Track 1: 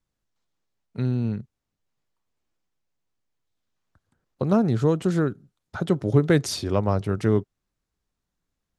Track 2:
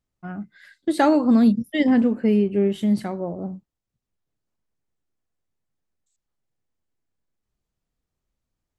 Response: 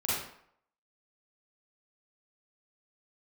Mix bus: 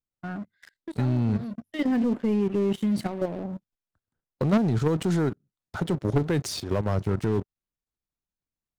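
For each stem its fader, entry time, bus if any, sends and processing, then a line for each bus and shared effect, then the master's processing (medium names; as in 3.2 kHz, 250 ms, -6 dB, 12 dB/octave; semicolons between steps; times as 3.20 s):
-12.5 dB, 0.00 s, no send, level rider gain up to 10.5 dB
-6.0 dB, 0.00 s, no send, hum notches 50/100 Hz; auto duck -19 dB, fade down 0.25 s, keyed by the first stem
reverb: none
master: level held to a coarse grid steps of 11 dB; waveshaping leveller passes 3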